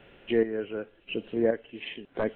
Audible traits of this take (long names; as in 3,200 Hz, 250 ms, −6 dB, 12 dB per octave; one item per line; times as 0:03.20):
chopped level 0.93 Hz, depth 60%, duty 40%